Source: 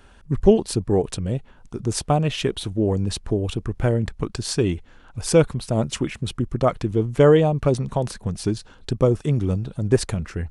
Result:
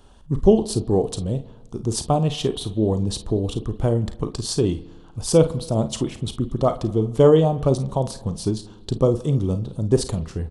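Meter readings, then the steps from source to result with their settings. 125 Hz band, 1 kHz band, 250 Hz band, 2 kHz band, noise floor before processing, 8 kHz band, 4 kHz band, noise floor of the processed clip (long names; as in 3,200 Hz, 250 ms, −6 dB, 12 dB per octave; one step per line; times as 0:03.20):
0.0 dB, 0.0 dB, +0.5 dB, −9.5 dB, −49 dBFS, +0.5 dB, 0.0 dB, −45 dBFS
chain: flat-topped bell 1,900 Hz −10.5 dB 1.1 octaves
ambience of single reflections 37 ms −13 dB, 51 ms −13.5 dB
spring reverb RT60 1.3 s, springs 55 ms, chirp 25 ms, DRR 17 dB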